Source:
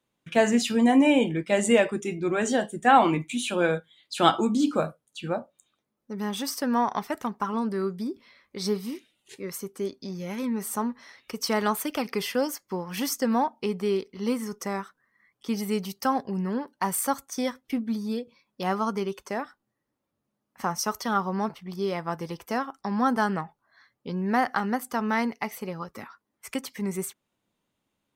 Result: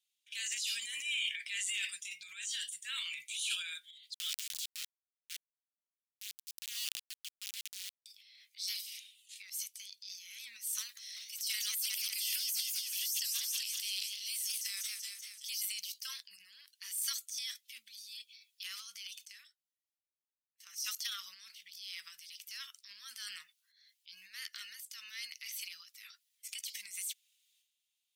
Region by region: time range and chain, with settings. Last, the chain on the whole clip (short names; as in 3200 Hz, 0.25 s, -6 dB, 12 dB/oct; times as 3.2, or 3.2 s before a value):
1.14–1.69 Bessel high-pass 490 Hz + bell 1800 Hz +9.5 dB 1.7 oct
4.14–8.06 bell 260 Hz -8.5 dB 0.32 oct + sample gate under -24 dBFS
10.78–15.63 tilt +3.5 dB/oct + warbling echo 0.191 s, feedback 63%, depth 136 cents, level -11 dB
19.25–20.67 HPF 920 Hz 24 dB/oct + gate -49 dBFS, range -18 dB + compressor 5:1, threshold -48 dBFS
24.48–25.31 comb 2.8 ms, depth 32% + upward expander, over -43 dBFS
whole clip: inverse Chebyshev high-pass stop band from 850 Hz, stop band 60 dB; limiter -27 dBFS; transient shaper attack -5 dB, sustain +11 dB; gain +1 dB